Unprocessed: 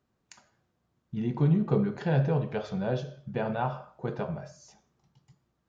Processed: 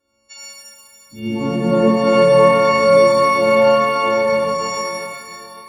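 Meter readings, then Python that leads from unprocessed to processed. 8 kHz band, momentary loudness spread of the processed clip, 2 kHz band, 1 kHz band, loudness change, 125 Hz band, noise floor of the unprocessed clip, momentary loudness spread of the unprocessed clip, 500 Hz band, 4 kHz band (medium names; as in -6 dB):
no reading, 17 LU, +21.0 dB, +20.5 dB, +15.5 dB, +1.0 dB, -77 dBFS, 12 LU, +20.5 dB, +23.0 dB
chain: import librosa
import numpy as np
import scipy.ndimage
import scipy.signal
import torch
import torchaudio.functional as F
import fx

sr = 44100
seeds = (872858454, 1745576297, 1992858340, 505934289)

y = fx.freq_snap(x, sr, grid_st=4)
y = y + 0.65 * np.pad(y, (int(3.6 * sr / 1000.0), 0))[:len(y)]
y = fx.cheby_harmonics(y, sr, harmonics=(7,), levels_db=(-34,), full_scale_db=-9.5)
y = fx.peak_eq(y, sr, hz=510.0, db=13.0, octaves=0.42)
y = fx.rev_shimmer(y, sr, seeds[0], rt60_s=3.0, semitones=12, shimmer_db=-8, drr_db=-8.5)
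y = F.gain(torch.from_numpy(y), -1.0).numpy()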